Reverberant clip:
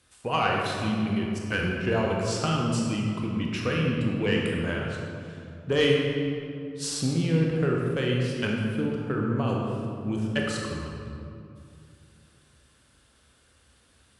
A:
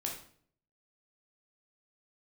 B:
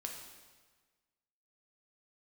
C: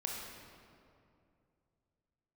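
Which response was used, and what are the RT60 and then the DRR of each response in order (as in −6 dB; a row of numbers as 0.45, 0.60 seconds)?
C; 0.55, 1.4, 2.5 seconds; −1.0, 1.0, −1.5 decibels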